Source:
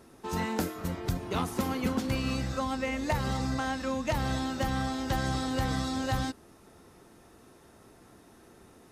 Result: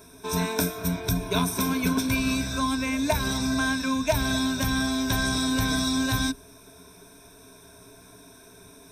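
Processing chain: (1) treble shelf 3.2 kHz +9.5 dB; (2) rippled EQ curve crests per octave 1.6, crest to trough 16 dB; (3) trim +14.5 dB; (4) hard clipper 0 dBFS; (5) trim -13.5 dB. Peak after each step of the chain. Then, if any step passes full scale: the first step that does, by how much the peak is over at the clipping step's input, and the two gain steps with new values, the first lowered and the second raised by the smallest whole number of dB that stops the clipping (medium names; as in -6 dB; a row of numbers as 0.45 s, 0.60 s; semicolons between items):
-13.0 dBFS, -10.5 dBFS, +4.0 dBFS, 0.0 dBFS, -13.5 dBFS; step 3, 4.0 dB; step 3 +10.5 dB, step 5 -9.5 dB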